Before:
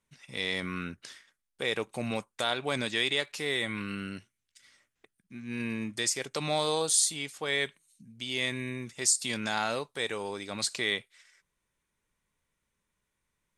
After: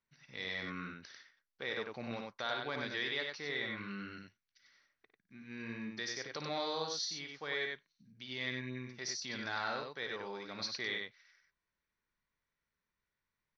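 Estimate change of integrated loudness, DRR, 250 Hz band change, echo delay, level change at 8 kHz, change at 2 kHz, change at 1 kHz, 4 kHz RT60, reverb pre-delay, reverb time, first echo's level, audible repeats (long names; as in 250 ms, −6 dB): −9.0 dB, no reverb audible, −8.5 dB, 55 ms, −17.5 dB, −6.0 dB, −6.5 dB, no reverb audible, no reverb audible, no reverb audible, −10.0 dB, 2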